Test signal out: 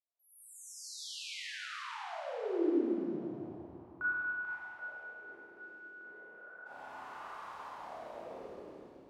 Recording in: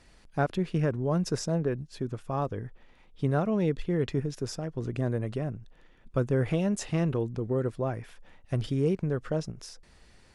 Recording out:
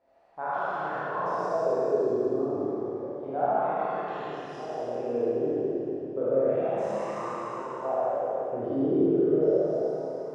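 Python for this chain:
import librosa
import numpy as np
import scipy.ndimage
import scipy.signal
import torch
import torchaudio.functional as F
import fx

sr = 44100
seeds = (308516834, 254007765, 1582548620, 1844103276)

y = fx.spec_trails(x, sr, decay_s=2.46)
y = fx.wah_lfo(y, sr, hz=0.31, low_hz=330.0, high_hz=1100.0, q=5.0)
y = fx.rev_schroeder(y, sr, rt60_s=2.8, comb_ms=26, drr_db=-9.0)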